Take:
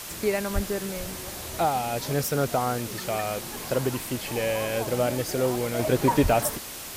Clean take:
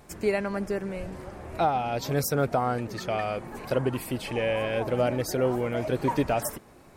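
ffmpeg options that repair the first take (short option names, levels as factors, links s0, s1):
-filter_complex "[0:a]asplit=3[s0][s1][s2];[s0]afade=t=out:st=0.54:d=0.02[s3];[s1]highpass=f=140:w=0.5412,highpass=f=140:w=1.3066,afade=t=in:st=0.54:d=0.02,afade=t=out:st=0.66:d=0.02[s4];[s2]afade=t=in:st=0.66:d=0.02[s5];[s3][s4][s5]amix=inputs=3:normalize=0,asplit=3[s6][s7][s8];[s6]afade=t=out:st=6.22:d=0.02[s9];[s7]highpass=f=140:w=0.5412,highpass=f=140:w=1.3066,afade=t=in:st=6.22:d=0.02,afade=t=out:st=6.34:d=0.02[s10];[s8]afade=t=in:st=6.34:d=0.02[s11];[s9][s10][s11]amix=inputs=3:normalize=0,afwtdn=0.014,asetnsamples=n=441:p=0,asendcmd='5.79 volume volume -4.5dB',volume=1"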